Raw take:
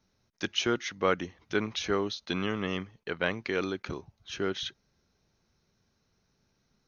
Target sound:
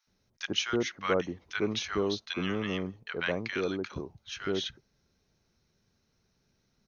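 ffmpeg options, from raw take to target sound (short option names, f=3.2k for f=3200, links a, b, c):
-filter_complex "[0:a]acrossover=split=1000[a][b];[a]adelay=70[c];[c][b]amix=inputs=2:normalize=0"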